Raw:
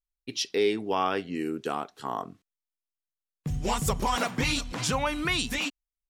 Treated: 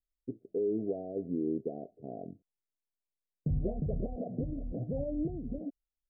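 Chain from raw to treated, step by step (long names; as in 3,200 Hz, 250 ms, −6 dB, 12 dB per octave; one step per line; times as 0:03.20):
brickwall limiter −22.5 dBFS, peak gain reduction 9 dB
Butterworth low-pass 680 Hz 96 dB per octave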